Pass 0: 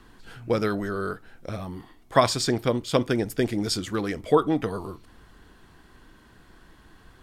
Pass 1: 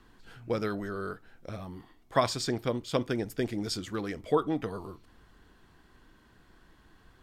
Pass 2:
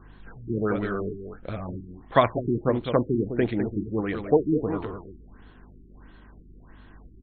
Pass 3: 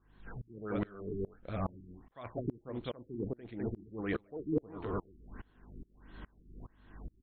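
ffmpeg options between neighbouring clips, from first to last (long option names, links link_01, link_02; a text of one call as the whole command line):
ffmpeg -i in.wav -af "equalizer=frequency=10000:width=1.9:gain=-3.5,volume=-6.5dB" out.wav
ffmpeg -i in.wav -af "aeval=exprs='val(0)+0.00141*(sin(2*PI*50*n/s)+sin(2*PI*2*50*n/s)/2+sin(2*PI*3*50*n/s)/3+sin(2*PI*4*50*n/s)/4+sin(2*PI*5*50*n/s)/5)':channel_layout=same,aecho=1:1:204:0.422,afftfilt=real='re*lt(b*sr/1024,400*pow(4400/400,0.5+0.5*sin(2*PI*1.5*pts/sr)))':imag='im*lt(b*sr/1024,400*pow(4400/400,0.5+0.5*sin(2*PI*1.5*pts/sr)))':win_size=1024:overlap=0.75,volume=6.5dB" out.wav
ffmpeg -i in.wav -af "areverse,acompressor=threshold=-31dB:ratio=12,areverse,aeval=exprs='val(0)*pow(10,-28*if(lt(mod(-2.4*n/s,1),2*abs(-2.4)/1000),1-mod(-2.4*n/s,1)/(2*abs(-2.4)/1000),(mod(-2.4*n/s,1)-2*abs(-2.4)/1000)/(1-2*abs(-2.4)/1000))/20)':channel_layout=same,volume=5.5dB" out.wav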